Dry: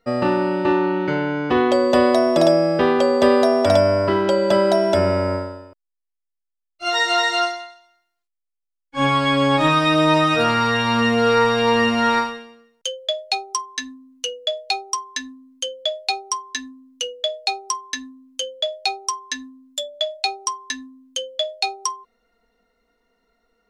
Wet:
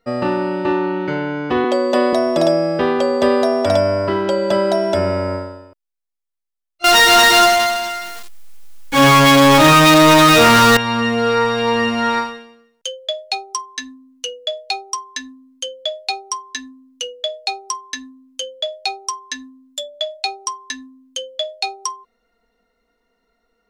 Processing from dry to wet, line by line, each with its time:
1.64–2.13 s: high-pass 200 Hz 24 dB/octave
6.84–10.77 s: power-law waveshaper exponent 0.35

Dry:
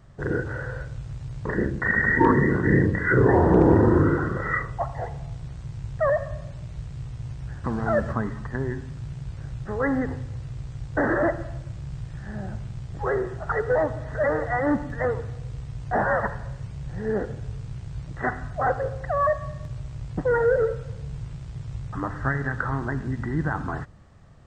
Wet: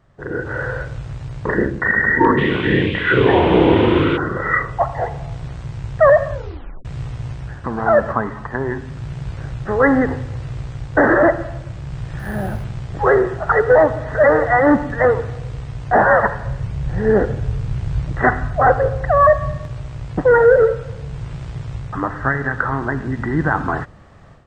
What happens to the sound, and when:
2.37–4.16 s: band noise 1.9–3.5 kHz -35 dBFS
6.31 s: tape stop 0.54 s
7.77–8.78 s: peaking EQ 890 Hz +7 dB 1.5 oct
12.19–12.64 s: careless resampling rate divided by 4×, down none, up hold
16.45–19.57 s: bass shelf 140 Hz +8.5 dB
whole clip: tone controls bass -6 dB, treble -7 dB; level rider gain up to 15 dB; trim -1 dB

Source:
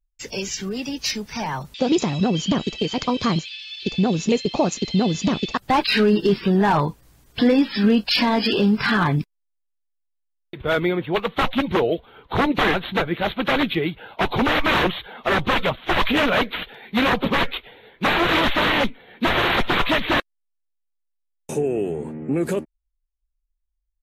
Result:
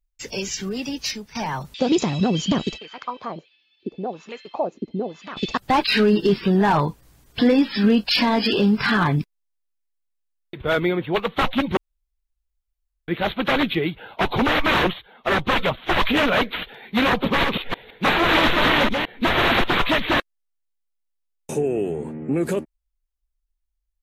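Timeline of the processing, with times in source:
0.94–1.35 s: fade out, to -11 dB
2.77–5.36 s: wah-wah 0.44 Hz -> 1.4 Hz 270–1500 Hz, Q 2.3
11.77–13.08 s: room tone
14.93–15.52 s: upward expansion, over -40 dBFS
17.25–19.64 s: chunks repeated in reverse 164 ms, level -3.5 dB

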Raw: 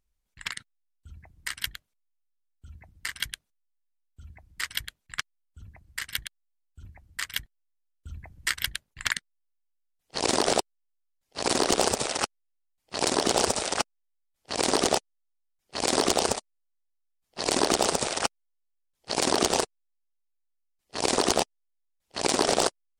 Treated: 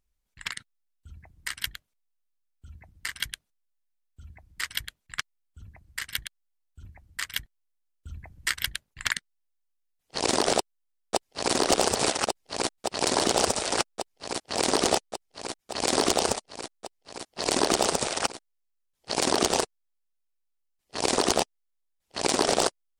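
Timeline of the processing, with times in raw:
10.56–11.54 s: echo throw 570 ms, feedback 85%, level -0.5 dB

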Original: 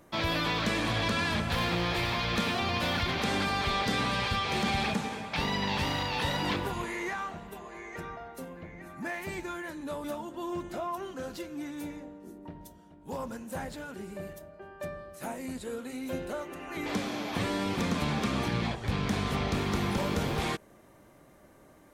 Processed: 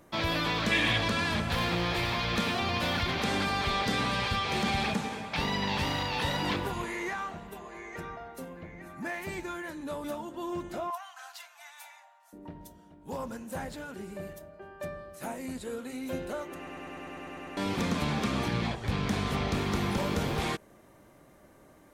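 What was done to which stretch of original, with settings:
0.71–0.97 s: time-frequency box 1.6–3.8 kHz +8 dB
10.90–12.33 s: steep high-pass 670 Hz 96 dB/octave
16.57 s: stutter in place 0.10 s, 10 plays

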